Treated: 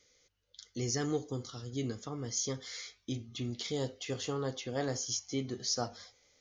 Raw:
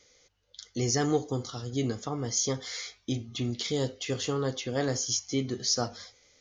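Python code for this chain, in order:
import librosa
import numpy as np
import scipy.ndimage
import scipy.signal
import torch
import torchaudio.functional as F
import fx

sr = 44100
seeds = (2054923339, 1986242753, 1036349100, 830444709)

y = fx.peak_eq(x, sr, hz=780.0, db=fx.steps((0.0, -5.0), (3.51, 3.0)), octaves=0.77)
y = y * 10.0 ** (-6.0 / 20.0)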